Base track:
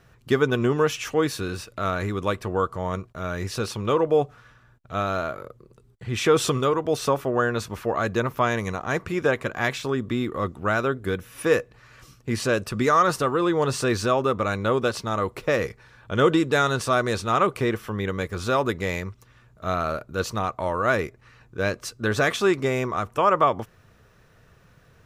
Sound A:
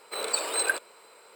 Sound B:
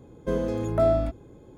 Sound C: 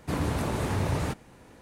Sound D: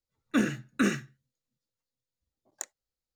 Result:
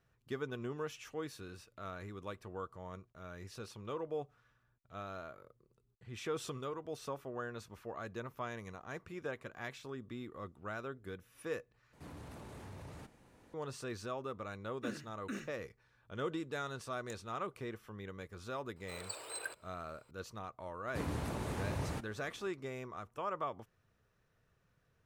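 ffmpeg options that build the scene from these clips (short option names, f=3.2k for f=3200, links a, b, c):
-filter_complex "[3:a]asplit=2[a][b];[0:a]volume=-19.5dB[c];[a]acompressor=threshold=-46dB:ratio=2:attack=2:release=24:knee=1:detection=peak[d];[c]asplit=2[e][f];[e]atrim=end=11.934[g];[d]atrim=end=1.61,asetpts=PTS-STARTPTS,volume=-11dB[h];[f]atrim=start=13.536[i];[4:a]atrim=end=3.15,asetpts=PTS-STARTPTS,volume=-17dB,afade=t=in:d=0.004:c=hsin,afade=t=out:st=3.146:d=0.004:c=hsin,adelay=14490[j];[1:a]atrim=end=1.35,asetpts=PTS-STARTPTS,volume=-16.5dB,afade=t=in:d=0.004:c=hsin,afade=t=out:st=1.346:d=0.004:c=hsin,adelay=827316S[k];[b]atrim=end=1.61,asetpts=PTS-STARTPTS,volume=-10dB,afade=t=in:d=0.004:c=hsin,afade=t=out:st=1.606:d=0.004:c=hsin,adelay=20870[l];[g][h]acrossfade=d=0.004:c1=hsin:c2=hsin[m];[m][i]acrossfade=d=0.004:c1=hsin:c2=hsin[n];[n][j][k][l]amix=inputs=4:normalize=0"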